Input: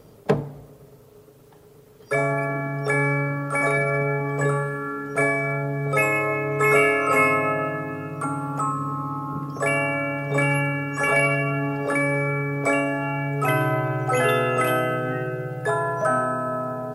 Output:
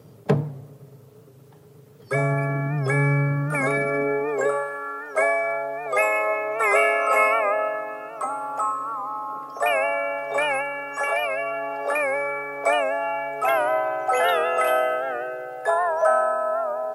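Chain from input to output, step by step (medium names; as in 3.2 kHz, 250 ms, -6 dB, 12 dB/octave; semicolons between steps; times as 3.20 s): 10.60–11.86 s: compression, threshold -21 dBFS, peak gain reduction 6 dB; high-pass sweep 120 Hz -> 670 Hz, 3.33–4.68 s; warped record 78 rpm, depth 100 cents; trim -2 dB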